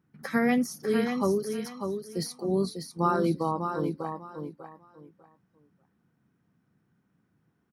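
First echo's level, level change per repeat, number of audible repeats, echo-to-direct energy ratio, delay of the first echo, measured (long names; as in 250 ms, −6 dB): −6.5 dB, −13.0 dB, 3, −6.5 dB, 596 ms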